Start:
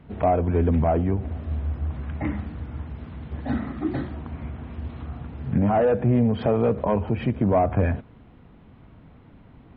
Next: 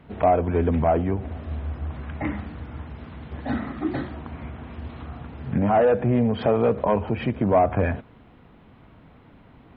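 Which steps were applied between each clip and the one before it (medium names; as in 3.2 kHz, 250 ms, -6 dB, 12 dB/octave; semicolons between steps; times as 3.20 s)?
bass shelf 300 Hz -7 dB; trim +3.5 dB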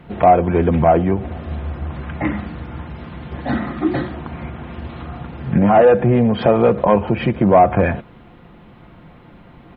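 comb 5.7 ms, depth 37%; trim +7 dB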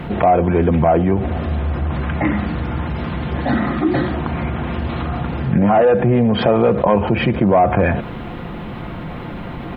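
level flattener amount 50%; trim -3 dB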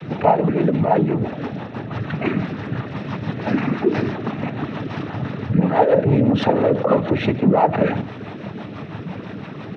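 speakerphone echo 370 ms, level -23 dB; noise-vocoded speech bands 12; rotary cabinet horn 6 Hz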